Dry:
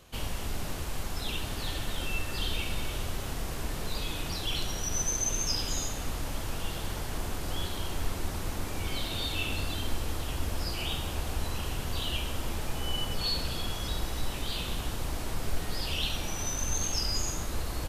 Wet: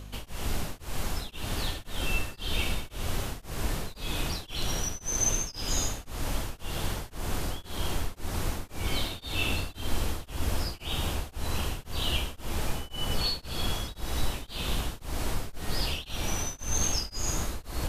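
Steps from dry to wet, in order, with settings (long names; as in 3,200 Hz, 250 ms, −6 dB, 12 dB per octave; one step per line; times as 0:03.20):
mains hum 50 Hz, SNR 17 dB
reversed playback
upward compression, threshold −34 dBFS
reversed playback
tremolo along a rectified sine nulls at 1.9 Hz
level +4 dB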